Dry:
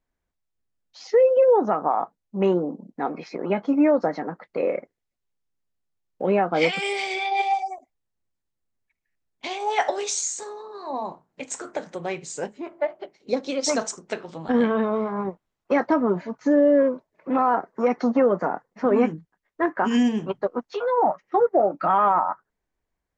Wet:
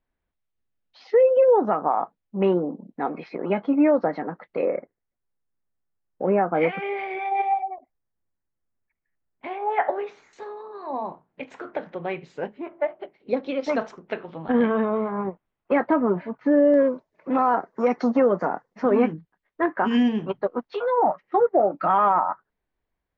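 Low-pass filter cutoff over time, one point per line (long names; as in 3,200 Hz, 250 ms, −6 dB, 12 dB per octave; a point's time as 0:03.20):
low-pass filter 24 dB per octave
3,700 Hz
from 0:04.65 2,000 Hz
from 0:10.33 3,100 Hz
from 0:16.74 6,500 Hz
from 0:18.96 4,100 Hz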